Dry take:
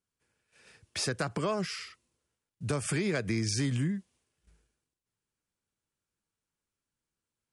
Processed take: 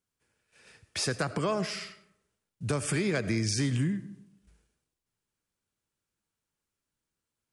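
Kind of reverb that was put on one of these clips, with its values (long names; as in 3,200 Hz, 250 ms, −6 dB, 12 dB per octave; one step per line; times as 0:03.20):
comb and all-pass reverb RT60 0.78 s, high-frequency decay 0.5×, pre-delay 45 ms, DRR 14 dB
level +1.5 dB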